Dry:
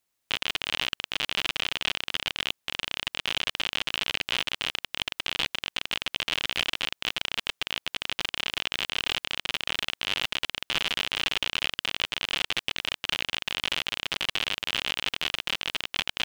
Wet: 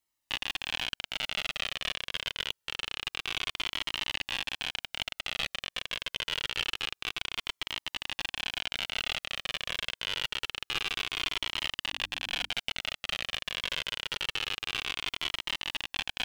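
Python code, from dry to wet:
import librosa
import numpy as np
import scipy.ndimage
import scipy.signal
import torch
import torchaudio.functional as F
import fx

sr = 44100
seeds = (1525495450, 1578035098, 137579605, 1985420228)

y = fx.hum_notches(x, sr, base_hz=50, count=6, at=(11.92, 12.48), fade=0.02)
y = fx.comb_cascade(y, sr, direction='falling', hz=0.26)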